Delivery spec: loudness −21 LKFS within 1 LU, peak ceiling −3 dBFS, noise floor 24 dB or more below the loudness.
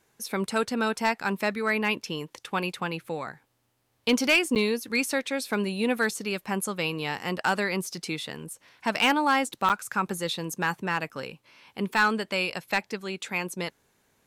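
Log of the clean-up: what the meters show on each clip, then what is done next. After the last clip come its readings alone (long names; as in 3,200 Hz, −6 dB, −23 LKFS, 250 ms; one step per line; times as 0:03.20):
share of clipped samples 0.3%; peaks flattened at −15.0 dBFS; number of dropouts 2; longest dropout 7.9 ms; integrated loudness −27.5 LKFS; sample peak −15.0 dBFS; target loudness −21.0 LKFS
→ clipped peaks rebuilt −15 dBFS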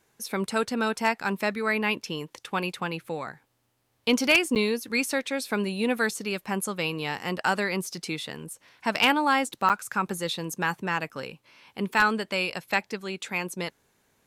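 share of clipped samples 0.0%; number of dropouts 2; longest dropout 7.9 ms
→ repair the gap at 0:04.55/0:09.69, 7.9 ms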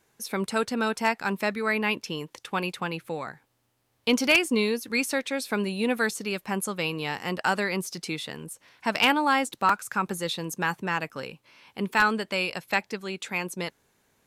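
number of dropouts 0; integrated loudness −27.0 LKFS; sample peak −6.0 dBFS; target loudness −21.0 LKFS
→ level +6 dB
brickwall limiter −3 dBFS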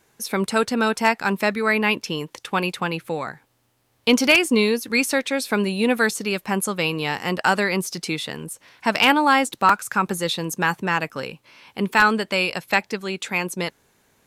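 integrated loudness −21.5 LKFS; sample peak −3.0 dBFS; background noise floor −65 dBFS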